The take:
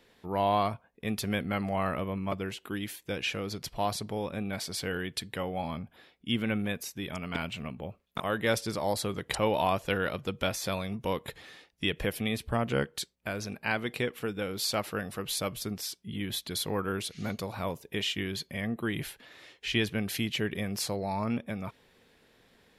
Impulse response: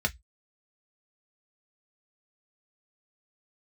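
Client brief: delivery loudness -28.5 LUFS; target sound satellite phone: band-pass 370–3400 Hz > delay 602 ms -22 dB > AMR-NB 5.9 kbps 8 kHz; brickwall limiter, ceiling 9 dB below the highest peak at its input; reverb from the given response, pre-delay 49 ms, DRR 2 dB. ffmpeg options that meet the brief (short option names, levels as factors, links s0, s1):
-filter_complex "[0:a]alimiter=limit=0.1:level=0:latency=1,asplit=2[s0][s1];[1:a]atrim=start_sample=2205,adelay=49[s2];[s1][s2]afir=irnorm=-1:irlink=0,volume=0.299[s3];[s0][s3]amix=inputs=2:normalize=0,highpass=370,lowpass=3400,aecho=1:1:602:0.0794,volume=2.66" -ar 8000 -c:a libopencore_amrnb -b:a 5900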